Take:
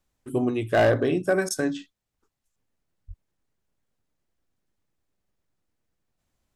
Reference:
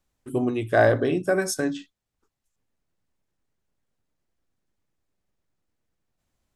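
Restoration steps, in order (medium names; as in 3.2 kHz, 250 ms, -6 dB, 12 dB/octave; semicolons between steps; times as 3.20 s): clip repair -14 dBFS; 3.07–3.19 s: high-pass 140 Hz 24 dB/octave; interpolate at 1.49 s, 14 ms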